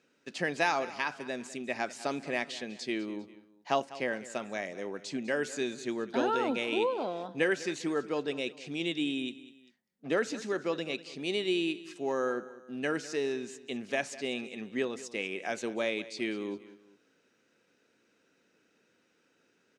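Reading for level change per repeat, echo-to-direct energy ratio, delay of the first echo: -7.5 dB, -16.5 dB, 0.199 s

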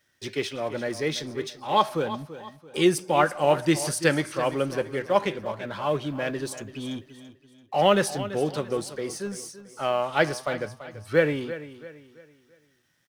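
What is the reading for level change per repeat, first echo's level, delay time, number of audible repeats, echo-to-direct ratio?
-8.5 dB, -14.0 dB, 0.336 s, 3, -13.5 dB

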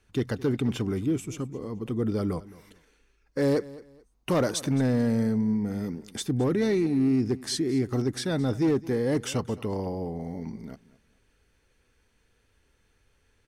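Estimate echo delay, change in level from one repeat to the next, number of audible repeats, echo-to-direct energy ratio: 0.216 s, -11.5 dB, 2, -19.0 dB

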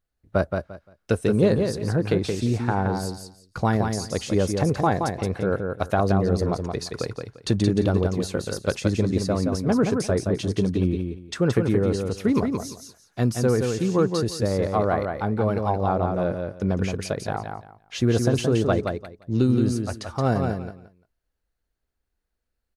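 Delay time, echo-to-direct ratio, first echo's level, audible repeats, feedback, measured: 0.173 s, -5.0 dB, -5.0 dB, 3, 21%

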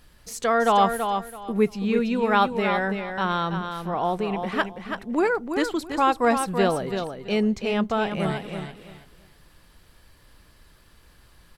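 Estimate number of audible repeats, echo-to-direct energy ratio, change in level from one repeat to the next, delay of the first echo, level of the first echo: 3, -7.0 dB, -13.0 dB, 0.331 s, -7.0 dB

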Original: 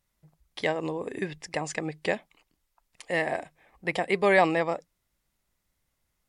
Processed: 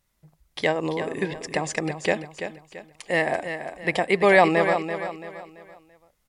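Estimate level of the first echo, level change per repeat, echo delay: -9.0 dB, -8.5 dB, 0.336 s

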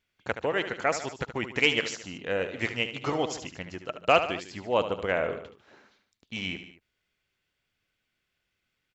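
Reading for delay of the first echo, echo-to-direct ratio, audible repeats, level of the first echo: 74 ms, -9.0 dB, 3, -10.5 dB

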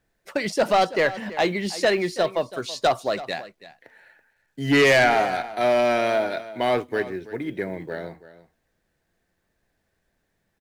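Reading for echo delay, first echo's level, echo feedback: 0.33 s, -16.0 dB, no steady repeat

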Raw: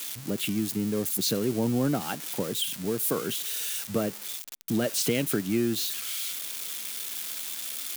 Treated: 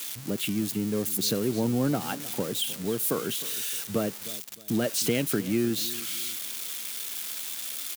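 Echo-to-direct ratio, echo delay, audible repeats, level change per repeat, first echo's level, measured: -17.0 dB, 0.309 s, 2, -9.0 dB, -17.5 dB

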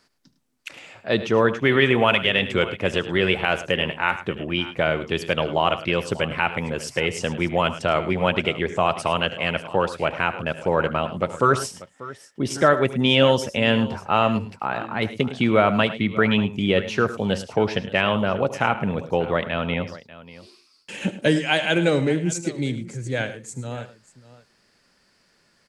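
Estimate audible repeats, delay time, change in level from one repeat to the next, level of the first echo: 3, 75 ms, no steady repeat, -17.0 dB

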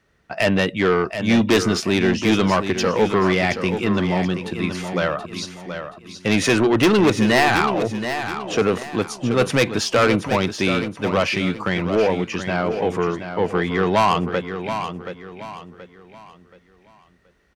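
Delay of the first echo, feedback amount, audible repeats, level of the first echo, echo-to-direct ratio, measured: 0.727 s, 35%, 3, -9.0 dB, -8.5 dB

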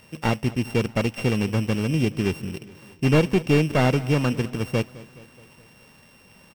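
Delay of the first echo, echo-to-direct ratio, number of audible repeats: 0.211 s, -17.0 dB, 4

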